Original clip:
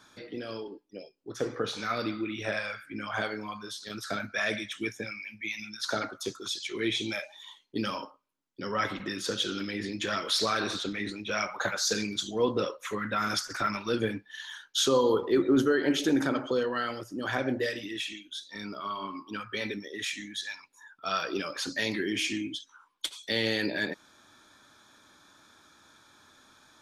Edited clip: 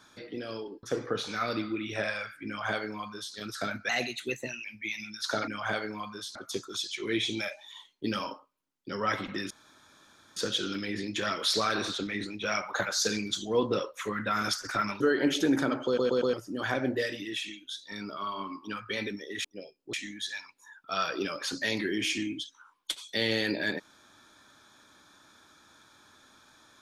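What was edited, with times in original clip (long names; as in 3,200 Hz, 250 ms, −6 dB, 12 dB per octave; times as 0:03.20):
0:00.83–0:01.32: move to 0:20.08
0:02.96–0:03.84: duplicate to 0:06.07
0:04.38–0:05.24: play speed 114%
0:09.22: splice in room tone 0.86 s
0:13.86–0:15.64: remove
0:16.49: stutter in place 0.12 s, 4 plays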